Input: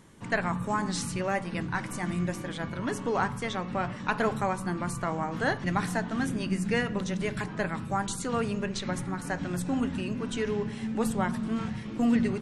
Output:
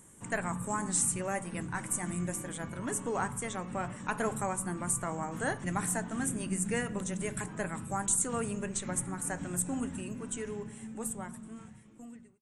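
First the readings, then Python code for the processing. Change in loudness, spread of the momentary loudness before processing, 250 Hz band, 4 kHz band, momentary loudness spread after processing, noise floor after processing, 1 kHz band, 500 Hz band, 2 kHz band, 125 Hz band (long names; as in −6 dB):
−3.5 dB, 5 LU, −7.0 dB, −9.5 dB, 11 LU, −54 dBFS, −5.5 dB, −6.0 dB, −6.0 dB, −5.5 dB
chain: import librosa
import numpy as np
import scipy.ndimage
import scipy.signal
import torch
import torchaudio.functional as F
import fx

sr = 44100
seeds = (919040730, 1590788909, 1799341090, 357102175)

y = fx.fade_out_tail(x, sr, length_s=3.05)
y = fx.high_shelf_res(y, sr, hz=6200.0, db=10.5, q=3.0)
y = y * 10.0 ** (-5.0 / 20.0)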